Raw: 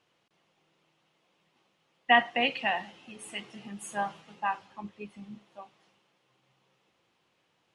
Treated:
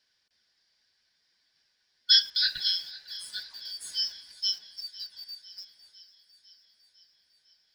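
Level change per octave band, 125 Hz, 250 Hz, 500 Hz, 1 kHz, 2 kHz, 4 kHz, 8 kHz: below −15 dB, below −30 dB, below −35 dB, below −30 dB, −10.0 dB, +12.0 dB, +4.5 dB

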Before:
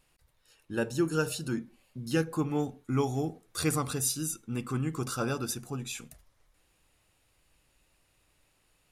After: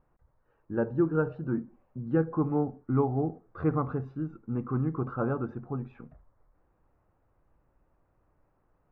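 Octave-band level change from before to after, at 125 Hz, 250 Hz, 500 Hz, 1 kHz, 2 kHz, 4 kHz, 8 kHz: +2.5 dB, +2.5 dB, +2.5 dB, +1.0 dB, −5.5 dB, below −30 dB, below −40 dB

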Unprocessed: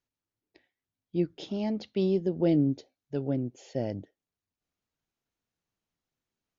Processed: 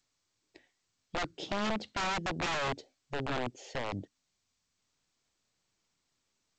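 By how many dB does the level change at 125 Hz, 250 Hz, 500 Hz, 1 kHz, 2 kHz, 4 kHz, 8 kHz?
−9.5 dB, −12.0 dB, −7.5 dB, +12.0 dB, +15.5 dB, +8.0 dB, can't be measured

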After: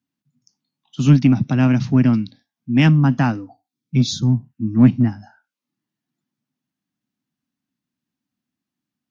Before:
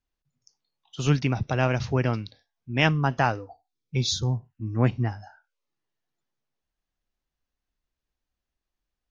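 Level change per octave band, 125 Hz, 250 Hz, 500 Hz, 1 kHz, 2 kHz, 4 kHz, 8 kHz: +8.5 dB, +14.0 dB, −1.5 dB, −0.5 dB, +0.5 dB, +1.0 dB, can't be measured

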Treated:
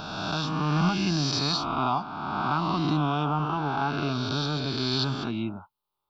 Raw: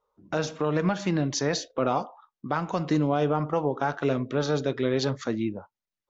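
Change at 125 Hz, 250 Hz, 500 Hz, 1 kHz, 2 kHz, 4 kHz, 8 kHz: +2.0 dB, 0.0 dB, −8.0 dB, +3.0 dB, +1.0 dB, +8.0 dB, can't be measured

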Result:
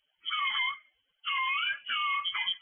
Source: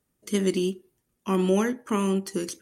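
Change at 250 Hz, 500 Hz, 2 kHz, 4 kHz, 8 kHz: below −40 dB, below −40 dB, +9.5 dB, +9.5 dB, below −40 dB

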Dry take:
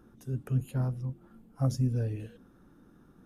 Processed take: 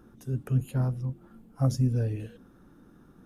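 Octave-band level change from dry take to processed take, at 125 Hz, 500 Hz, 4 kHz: +3.0, +3.0, +3.0 decibels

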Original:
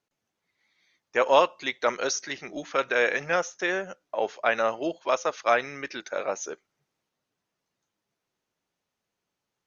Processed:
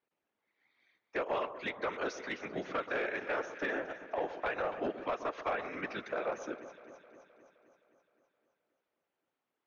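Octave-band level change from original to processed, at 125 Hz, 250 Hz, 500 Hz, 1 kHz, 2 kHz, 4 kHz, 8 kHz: −5.5 dB, −5.5 dB, −10.0 dB, −10.5 dB, −9.5 dB, −13.5 dB, can't be measured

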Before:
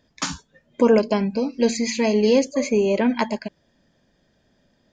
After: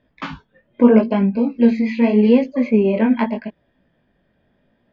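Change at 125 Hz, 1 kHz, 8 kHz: can't be measured, +1.0 dB, below −25 dB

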